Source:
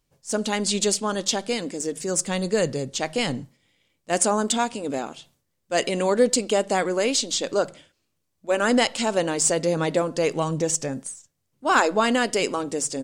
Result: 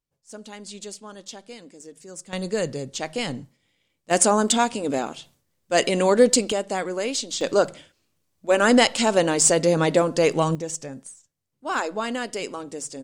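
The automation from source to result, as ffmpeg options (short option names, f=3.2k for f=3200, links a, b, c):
-af "asetnsamples=n=441:p=0,asendcmd='2.33 volume volume -3dB;4.11 volume volume 3dB;6.52 volume volume -4dB;7.41 volume volume 3.5dB;10.55 volume volume -7dB',volume=-15dB"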